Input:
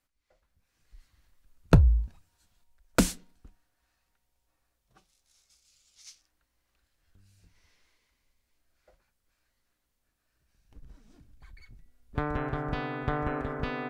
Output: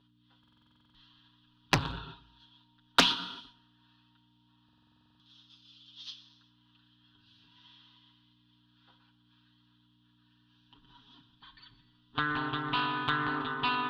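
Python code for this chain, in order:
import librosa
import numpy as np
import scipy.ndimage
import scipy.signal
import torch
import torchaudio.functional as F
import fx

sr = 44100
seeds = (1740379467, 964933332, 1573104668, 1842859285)

p1 = fx.lowpass_res(x, sr, hz=3300.0, q=6.4)
p2 = fx.fixed_phaser(p1, sr, hz=2200.0, stages=6)
p3 = p2 + fx.echo_feedback(p2, sr, ms=121, feedback_pct=36, wet_db=-21.0, dry=0)
p4 = fx.rev_gated(p3, sr, seeds[0], gate_ms=420, shape='falling', drr_db=11.0)
p5 = fx.add_hum(p4, sr, base_hz=60, snr_db=25)
p6 = 10.0 ** (-17.0 / 20.0) * (np.abs((p5 / 10.0 ** (-17.0 / 20.0) + 3.0) % 4.0 - 2.0) - 1.0)
p7 = p5 + (p6 * librosa.db_to_amplitude(-6.0))
p8 = fx.highpass(p7, sr, hz=690.0, slope=6)
p9 = fx.peak_eq(p8, sr, hz=970.0, db=11.5, octaves=0.21)
p10 = p9 + 0.88 * np.pad(p9, (int(7.3 * sr / 1000.0), 0))[:len(p9)]
p11 = fx.buffer_glitch(p10, sr, at_s=(0.39, 4.64), block=2048, repeats=11)
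y = fx.doppler_dist(p11, sr, depth_ms=0.54)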